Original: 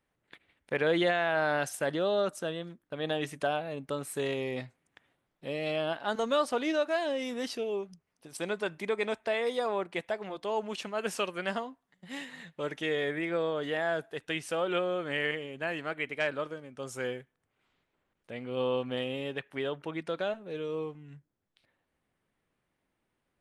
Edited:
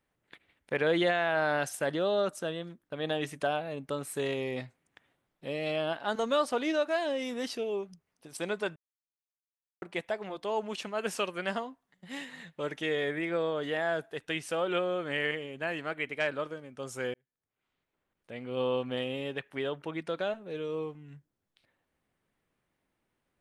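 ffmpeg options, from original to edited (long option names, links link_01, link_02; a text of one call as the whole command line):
ffmpeg -i in.wav -filter_complex "[0:a]asplit=4[link_01][link_02][link_03][link_04];[link_01]atrim=end=8.76,asetpts=PTS-STARTPTS,afade=type=out:start_time=8.756:duration=0.004:curve=hsin[link_05];[link_02]atrim=start=8.76:end=9.82,asetpts=PTS-STARTPTS,volume=0[link_06];[link_03]atrim=start=9.82:end=17.14,asetpts=PTS-STARTPTS,afade=type=in:duration=0.004:curve=hsin,afade=type=out:start_time=7.316:duration=0.004:curve=hsin[link_07];[link_04]atrim=start=17.14,asetpts=PTS-STARTPTS,afade=type=in:duration=1.43[link_08];[link_05][link_06][link_07][link_08]concat=n=4:v=0:a=1" out.wav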